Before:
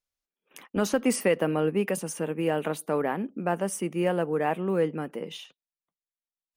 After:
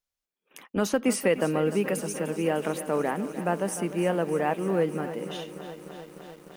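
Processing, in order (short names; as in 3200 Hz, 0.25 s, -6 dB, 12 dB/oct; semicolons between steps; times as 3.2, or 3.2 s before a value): lo-fi delay 0.301 s, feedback 80%, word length 8-bit, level -13 dB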